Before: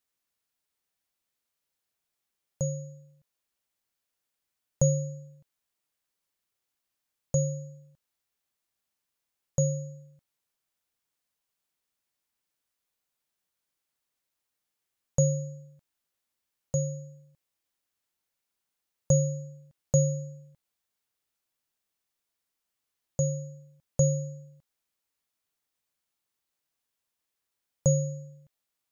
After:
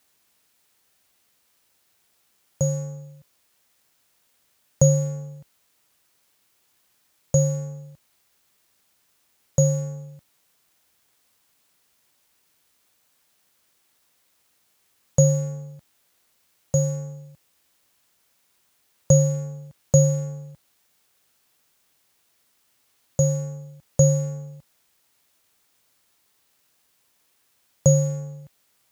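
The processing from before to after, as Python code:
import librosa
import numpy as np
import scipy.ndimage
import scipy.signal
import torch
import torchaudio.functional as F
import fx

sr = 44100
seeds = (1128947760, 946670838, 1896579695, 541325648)

y = fx.law_mismatch(x, sr, coded='mu')
y = scipy.signal.sosfilt(scipy.signal.butter(2, 47.0, 'highpass', fs=sr, output='sos'), y)
y = F.gain(torch.from_numpy(y), 6.5).numpy()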